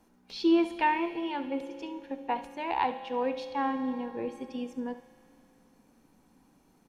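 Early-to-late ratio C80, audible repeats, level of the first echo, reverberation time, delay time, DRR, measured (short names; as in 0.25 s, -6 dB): 12.0 dB, 1, -14.0 dB, 2.7 s, 70 ms, 9.0 dB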